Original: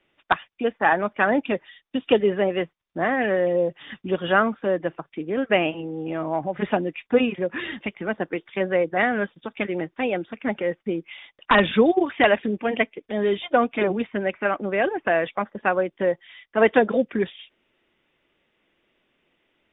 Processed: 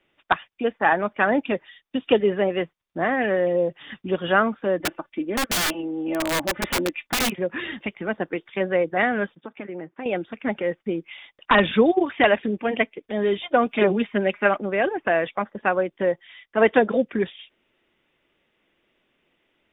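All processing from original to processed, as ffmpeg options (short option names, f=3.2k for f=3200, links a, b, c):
-filter_complex "[0:a]asettb=1/sr,asplit=3[a][b][c];[a]atrim=end=4.804[d];[b]atrim=start=4.8:end=7.32,asetpts=PTS-STARTPTS,afade=t=in:d=0.004:c=qsin,afade=t=out:st=2.516:d=0.004:c=qsin,aecho=1:1:3.4:0.69,atrim=end_sample=111132,aeval=exprs='(mod(7.5*val(0)+1,2)-1)/7.5':c=same[e];[c]atrim=start=7.316[f];[d][e]acrossfade=d=0.004:c1=hsin:c2=qsin[g];[g][f]acrossfade=d=0.004:c1=qsin:c2=hsin,asettb=1/sr,asplit=3[h][i][j];[h]atrim=end=9.354[k];[i]atrim=start=9.35:end=10.06,asetpts=PTS-STARTPTS,afade=t=in:d=0.004:c=qsin,afade=t=out:st=0.706:d=0.004:c=qsin,acompressor=threshold=-31dB:ratio=3:attack=3.2:release=140:knee=1:detection=peak,highpass=130,lowpass=2k[l];[j]atrim=start=10.056[m];[k][l]acrossfade=d=0.004:c1=hsin:c2=qsin[n];[n][m]acrossfade=d=0.004:c1=qsin:c2=hsin,asettb=1/sr,asplit=3[o][p][q];[o]atrim=end=13.664[r];[p]atrim=start=13.66:end=14.58,asetpts=PTS-STARTPTS,afade=t=in:d=0.004:c=qsin,afade=t=out:st=0.916:d=0.004:c=qsin,highshelf=f=2.9k:g=7,aecho=1:1:4.9:0.56,atrim=end_sample=40572[s];[q]atrim=start=14.576[t];[r][s]acrossfade=d=0.004:c1=hsin:c2=qsin[u];[u][t]acrossfade=d=0.004:c1=qsin:c2=hsin"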